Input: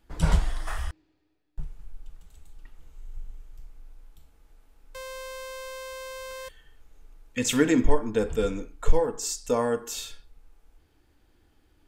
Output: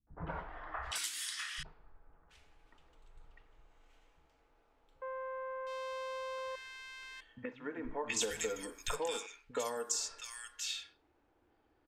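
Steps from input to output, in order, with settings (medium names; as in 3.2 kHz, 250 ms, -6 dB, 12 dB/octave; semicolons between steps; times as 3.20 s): level-controlled noise filter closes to 940 Hz, open at -19 dBFS; tilt EQ +4.5 dB/octave; compression 10:1, threshold -36 dBFS, peak gain reduction 20.5 dB; three bands offset in time lows, mids, highs 70/720 ms, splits 190/1600 Hz; trim +3 dB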